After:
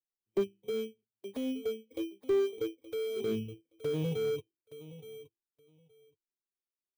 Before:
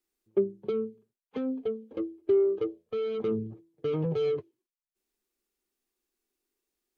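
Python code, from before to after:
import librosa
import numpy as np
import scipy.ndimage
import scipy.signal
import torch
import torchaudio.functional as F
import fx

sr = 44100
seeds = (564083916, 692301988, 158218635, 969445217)

p1 = fx.bit_reversed(x, sr, seeds[0], block=16)
p2 = fx.noise_reduce_blind(p1, sr, reduce_db=15)
p3 = fx.env_flanger(p2, sr, rest_ms=10.7, full_db=-35.5)
p4 = p3 + fx.echo_feedback(p3, sr, ms=871, feedback_pct=15, wet_db=-16, dry=0)
p5 = fx.slew_limit(p4, sr, full_power_hz=36.0)
y = p5 * 10.0 ** (-2.5 / 20.0)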